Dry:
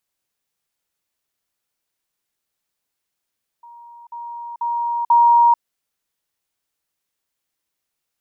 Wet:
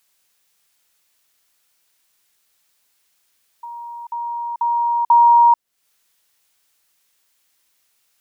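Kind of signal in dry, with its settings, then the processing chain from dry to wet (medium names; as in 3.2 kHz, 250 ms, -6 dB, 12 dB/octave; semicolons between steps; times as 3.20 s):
level ladder 944 Hz -39 dBFS, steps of 10 dB, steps 4, 0.44 s 0.05 s
in parallel at -2 dB: compression, threshold -25 dBFS; on the sum: tape noise reduction on one side only encoder only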